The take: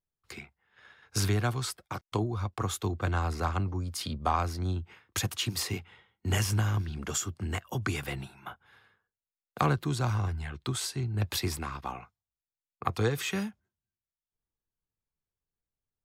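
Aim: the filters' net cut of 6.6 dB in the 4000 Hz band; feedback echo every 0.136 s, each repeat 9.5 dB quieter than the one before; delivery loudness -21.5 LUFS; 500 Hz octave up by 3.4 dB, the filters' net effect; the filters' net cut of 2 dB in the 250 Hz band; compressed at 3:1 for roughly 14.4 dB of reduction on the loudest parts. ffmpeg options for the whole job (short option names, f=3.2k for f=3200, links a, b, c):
-af "equalizer=f=250:t=o:g=-5,equalizer=f=500:t=o:g=6,equalizer=f=4k:t=o:g=-9,acompressor=threshold=-41dB:ratio=3,aecho=1:1:136|272|408|544:0.335|0.111|0.0365|0.012,volume=21dB"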